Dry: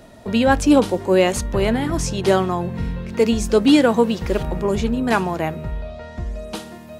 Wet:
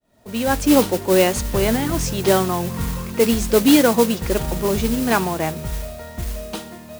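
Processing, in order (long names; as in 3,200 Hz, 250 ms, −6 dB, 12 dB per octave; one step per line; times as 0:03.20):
fade in at the beginning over 0.81 s
noise that follows the level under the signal 12 dB
0:02.70–0:03.12: parametric band 1,100 Hz +10.5 dB 0.44 octaves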